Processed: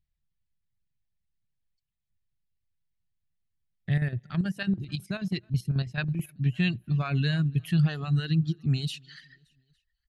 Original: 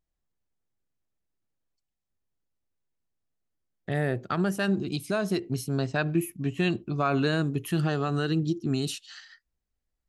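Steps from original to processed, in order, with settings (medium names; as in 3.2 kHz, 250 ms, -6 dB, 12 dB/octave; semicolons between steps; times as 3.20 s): high-order bell 2.8 kHz +9.5 dB; feedback delay 286 ms, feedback 39%, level -20 dB; reverb removal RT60 0.92 s; resonant low shelf 220 Hz +13.5 dB, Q 1.5; 3.91–6.29 s: square tremolo 9.2 Hz, depth 60%, duty 60%; trim -8.5 dB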